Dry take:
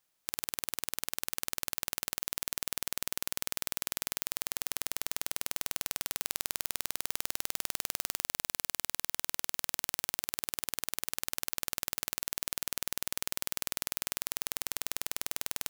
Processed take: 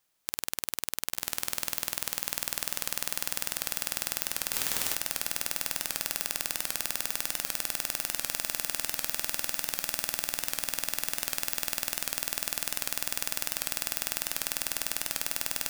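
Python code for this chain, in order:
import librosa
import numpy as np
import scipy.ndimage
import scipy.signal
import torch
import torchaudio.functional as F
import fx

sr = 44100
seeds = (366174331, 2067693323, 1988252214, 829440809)

y = fx.echo_diffused(x, sr, ms=1096, feedback_pct=69, wet_db=-7.5)
y = fx.quant_dither(y, sr, seeds[0], bits=6, dither='triangular', at=(4.53, 4.95))
y = fx.record_warp(y, sr, rpm=78.0, depth_cents=100.0)
y = F.gain(torch.from_numpy(y), 2.5).numpy()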